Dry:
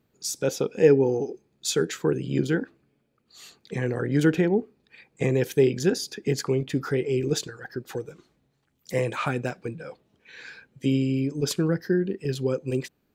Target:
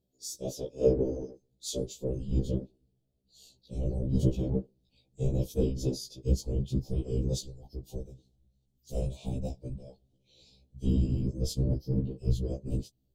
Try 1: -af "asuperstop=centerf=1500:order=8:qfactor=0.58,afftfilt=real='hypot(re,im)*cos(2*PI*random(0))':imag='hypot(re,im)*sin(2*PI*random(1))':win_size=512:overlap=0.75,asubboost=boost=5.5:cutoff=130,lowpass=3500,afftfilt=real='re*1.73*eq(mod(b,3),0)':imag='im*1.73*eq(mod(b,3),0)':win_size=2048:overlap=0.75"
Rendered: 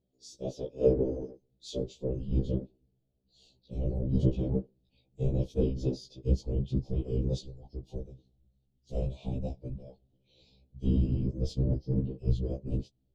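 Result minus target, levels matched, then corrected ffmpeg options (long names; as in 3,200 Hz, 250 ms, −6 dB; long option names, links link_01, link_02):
4,000 Hz band −5.5 dB
-af "asuperstop=centerf=1500:order=8:qfactor=0.58,afftfilt=real='hypot(re,im)*cos(2*PI*random(0))':imag='hypot(re,im)*sin(2*PI*random(1))':win_size=512:overlap=0.75,asubboost=boost=5.5:cutoff=130,afftfilt=real='re*1.73*eq(mod(b,3),0)':imag='im*1.73*eq(mod(b,3),0)':win_size=2048:overlap=0.75"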